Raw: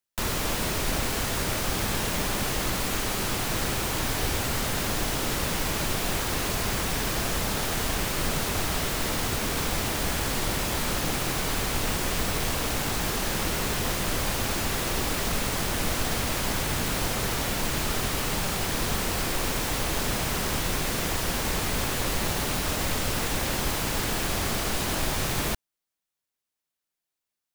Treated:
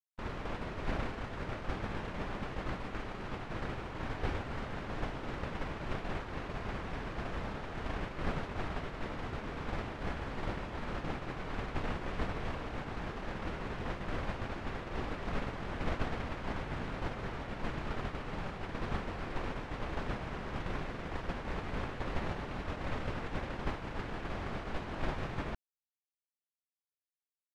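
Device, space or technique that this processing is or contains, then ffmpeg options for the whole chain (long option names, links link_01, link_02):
hearing-loss simulation: -af "lowpass=2000,agate=range=-33dB:threshold=-19dB:ratio=3:detection=peak,volume=3dB"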